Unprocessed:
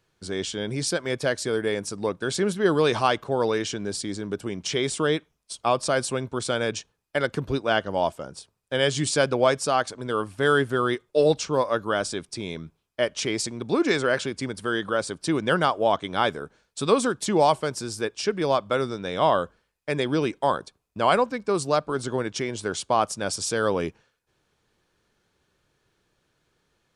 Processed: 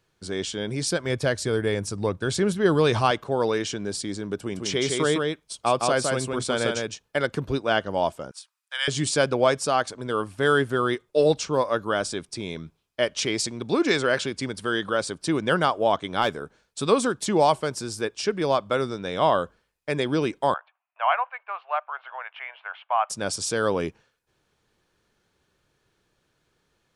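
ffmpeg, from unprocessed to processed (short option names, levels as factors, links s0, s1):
-filter_complex "[0:a]asettb=1/sr,asplit=3[s0][s1][s2];[s0]atrim=end=0.904[s3];[s1]atrim=start=0.9:end=3.11,asetpts=PTS-STARTPTS,afade=t=in:d=0.004:c=qsin,afade=t=out:st=2.206:d=0.004:c=qsin,equalizer=f=86:w=1.2:g=12.5[s4];[s2]atrim=start=3.106[s5];[s3][s4]acrossfade=d=0.004:c1=hsin:c2=qsin[s6];[s6][s5]acrossfade=d=0.004:c1=qsin:c2=hsin,asettb=1/sr,asplit=3[s7][s8][s9];[s7]atrim=end=4.364[s10];[s8]atrim=start=4.36:end=7.23,asetpts=PTS-STARTPTS,afade=t=in:d=0.004:c=qsin,afade=t=out:st=2.866:d=0.004:c=qsin,aecho=1:1:161:0.668,atrim=end_sample=126567[s11];[s9]atrim=start=7.226[s12];[s10][s11]acrossfade=d=0.004:c1=hsin:c2=qsin[s13];[s13][s12]acrossfade=d=0.004:c1=qsin:c2=hsin,asettb=1/sr,asplit=3[s14][s15][s16];[s14]atrim=end=8.314[s17];[s15]atrim=start=8.31:end=8.88,asetpts=PTS-STARTPTS,afade=t=in:d=0.004:c=qsin,afade=t=out:st=0.566:d=0.004:c=qsin,highpass=f=1100:w=0.5412,highpass=f=1100:w=1.3066[s18];[s16]atrim=start=8.876[s19];[s17][s18]acrossfade=d=0.004:c1=hsin:c2=qsin[s20];[s20][s19]acrossfade=d=0.004:c1=qsin:c2=hsin,asettb=1/sr,asplit=3[s21][s22][s23];[s21]atrim=end=12.564[s24];[s22]atrim=start=12.56:end=15.11,asetpts=PTS-STARTPTS,afade=t=in:d=0.004:c=qsin,afade=t=out:st=2.546:d=0.004:c=qsin,equalizer=f=3900:t=o:w=1.6:g=3[s25];[s23]atrim=start=15.106[s26];[s24][s25]acrossfade=d=0.004:c1=hsin:c2=qsin[s27];[s27][s26]acrossfade=d=0.004:c1=qsin:c2=hsin,asplit=3[s28][s29][s30];[s28]afade=t=out:st=16.21:d=0.02[s31];[s29]asoftclip=type=hard:threshold=0.188,afade=t=in:st=16.21:d=0.02,afade=t=out:st=16.84:d=0.02[s32];[s30]afade=t=in:st=16.84:d=0.02[s33];[s31][s32][s33]amix=inputs=3:normalize=0,asettb=1/sr,asplit=3[s34][s35][s36];[s34]atrim=end=20.544[s37];[s35]atrim=start=20.54:end=23.1,asetpts=PTS-STARTPTS,afade=t=in:d=0.004:c=qsin,afade=t=out:st=2.556:d=0.004:c=qsin,asuperpass=centerf=1400:order=12:qfactor=0.63[s38];[s36]atrim=start=23.096[s39];[s37][s38]acrossfade=d=0.004:c1=hsin:c2=qsin[s40];[s40][s39]acrossfade=d=0.004:c1=qsin:c2=hsin"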